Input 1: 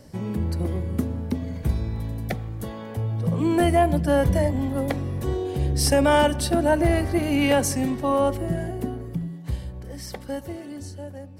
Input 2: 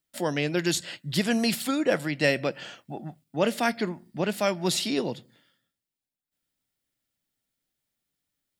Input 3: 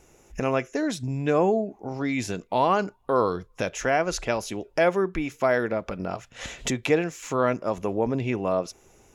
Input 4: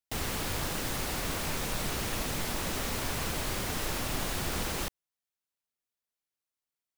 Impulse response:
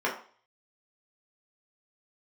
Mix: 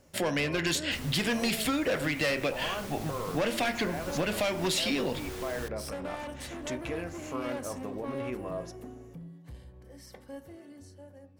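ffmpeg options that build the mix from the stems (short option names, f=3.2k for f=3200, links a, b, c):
-filter_complex "[0:a]asoftclip=type=tanh:threshold=-23dB,volume=-14.5dB,asplit=2[a][b];[b]volume=-16dB[c];[1:a]asoftclip=type=hard:threshold=-21dB,equalizer=f=2.5k:w=1.3:g=6.5,volume=2.5dB,asplit=2[d][e];[e]volume=-17dB[f];[2:a]alimiter=limit=-17.5dB:level=0:latency=1,volume=-11dB,asplit=2[g][h];[h]volume=-16.5dB[i];[3:a]adelay=800,volume=-10dB[j];[4:a]atrim=start_sample=2205[k];[c][f][i]amix=inputs=3:normalize=0[l];[l][k]afir=irnorm=-1:irlink=0[m];[a][d][g][j][m]amix=inputs=5:normalize=0,volume=16.5dB,asoftclip=hard,volume=-16.5dB,acompressor=threshold=-26dB:ratio=6"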